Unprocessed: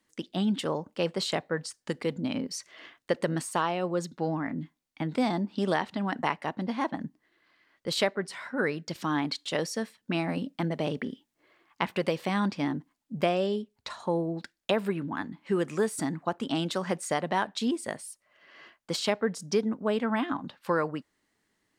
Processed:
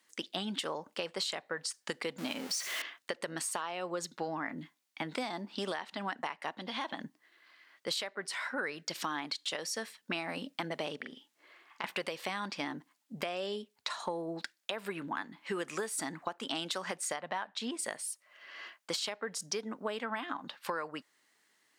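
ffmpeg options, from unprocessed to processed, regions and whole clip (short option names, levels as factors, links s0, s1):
-filter_complex "[0:a]asettb=1/sr,asplit=3[s0][s1][s2];[s0]atrim=end=2.184[s3];[s1]atrim=start=2.18:end=2.82,asetpts=PTS-STARTPTS,afade=t=in:d=0.004:c=qsin,afade=t=out:st=0.636:d=0.004:c=qsin,aeval=exprs='val(0)+0.5*0.0141*sgn(val(0))':c=same,highpass=130[s4];[s2]atrim=start=2.816[s5];[s3][s4]acrossfade=d=0.004:c1=hsin:c2=qsin[s6];[s6][s5]acrossfade=d=0.004:c1=qsin:c2=hsin,asettb=1/sr,asplit=3[s7][s8][s9];[s7]atrim=end=6.574[s10];[s8]atrim=start=6.57:end=7.04,asetpts=PTS-STARTPTS,afade=t=in:d=0.004:c=qsin,afade=t=out:st=0.466:d=0.004:c=qsin,acompressor=threshold=0.0251:ratio=6:attack=3.2:release=140:knee=1:detection=peak,equalizer=f=3400:t=o:w=0.5:g=9[s11];[s9]atrim=start=7.036[s12];[s10][s11]acrossfade=d=0.004:c1=hsin:c2=qsin[s13];[s13][s12]acrossfade=d=0.004:c1=qsin:c2=hsin,asettb=1/sr,asplit=3[s14][s15][s16];[s14]atrim=end=10.964[s17];[s15]atrim=start=10.96:end=11.84,asetpts=PTS-STARTPTS,afade=t=in:d=0.004:c=qsin,afade=t=out:st=0.876:d=0.004:c=qsin,highshelf=f=11000:g=-5.5,acompressor=threshold=0.0112:ratio=5:attack=3.2:release=140:knee=1:detection=peak,asplit=2[s18][s19];[s19]adelay=43,volume=0.501[s20];[s18][s20]amix=inputs=2:normalize=0,atrim=end_sample=38808[s21];[s16]atrim=start=11.836[s22];[s17][s21]acrossfade=d=0.004:c1=hsin:c2=qsin[s23];[s23][s22]acrossfade=d=0.004:c1=qsin:c2=hsin,asettb=1/sr,asplit=3[s24][s25][s26];[s24]atrim=end=17.164[s27];[s25]atrim=start=17.16:end=17.79,asetpts=PTS-STARTPTS,afade=t=in:d=0.004:c=qsin,afade=t=out:st=0.626:d=0.004:c=qsin,lowpass=f=2300:p=1,equalizer=f=370:w=2:g=-5.5[s28];[s26]atrim=start=17.786[s29];[s27][s28]acrossfade=d=0.004:c1=hsin:c2=qsin[s30];[s30][s29]acrossfade=d=0.004:c1=qsin:c2=hsin,highpass=f=1100:p=1,alimiter=limit=0.075:level=0:latency=1:release=415,acompressor=threshold=0.0112:ratio=6,volume=2.11"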